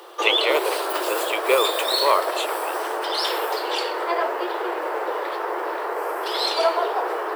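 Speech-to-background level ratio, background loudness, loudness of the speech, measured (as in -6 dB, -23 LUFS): -0.5 dB, -24.0 LUFS, -24.5 LUFS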